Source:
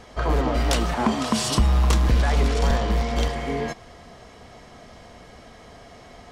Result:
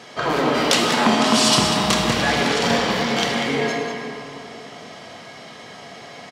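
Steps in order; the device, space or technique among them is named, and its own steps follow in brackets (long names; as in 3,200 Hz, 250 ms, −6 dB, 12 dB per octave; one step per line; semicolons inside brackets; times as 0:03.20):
PA in a hall (high-pass filter 130 Hz 24 dB per octave; parametric band 3,600 Hz +7 dB 2.4 octaves; single-tap delay 193 ms −10 dB; convolution reverb RT60 2.9 s, pre-delay 19 ms, DRR 0 dB)
level +2 dB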